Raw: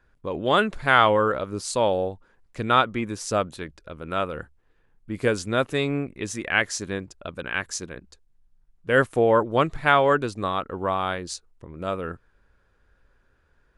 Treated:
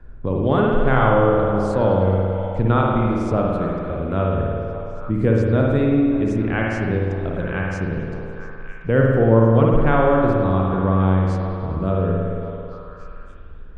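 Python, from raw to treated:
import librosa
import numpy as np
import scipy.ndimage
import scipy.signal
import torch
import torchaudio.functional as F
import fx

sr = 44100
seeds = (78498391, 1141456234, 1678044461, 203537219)

p1 = fx.tilt_eq(x, sr, slope=-4.5)
p2 = p1 + fx.echo_stepped(p1, sr, ms=283, hz=490.0, octaves=0.7, feedback_pct=70, wet_db=-9.5, dry=0)
p3 = fx.rev_spring(p2, sr, rt60_s=1.6, pass_ms=(53,), chirp_ms=50, drr_db=-2.0)
p4 = fx.band_squash(p3, sr, depth_pct=40)
y = p4 * 10.0 ** (-4.0 / 20.0)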